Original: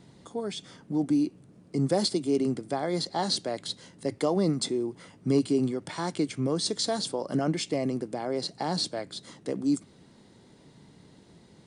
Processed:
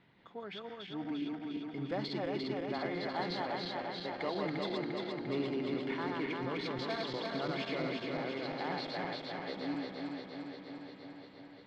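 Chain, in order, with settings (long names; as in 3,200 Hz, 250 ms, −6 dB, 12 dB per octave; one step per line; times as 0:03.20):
feedback delay that plays each chunk backwards 174 ms, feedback 82%, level −2 dB
low-pass filter 2,600 Hz 24 dB per octave
tilt shelving filter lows −9.5 dB, about 1,100 Hz
in parallel at −9.5 dB: hard clipping −24.5 dBFS, distortion −18 dB
on the sum: feedback echo with a long and a short gap by turns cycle 1,199 ms, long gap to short 3 to 1, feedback 35%, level −16 dB
level −8.5 dB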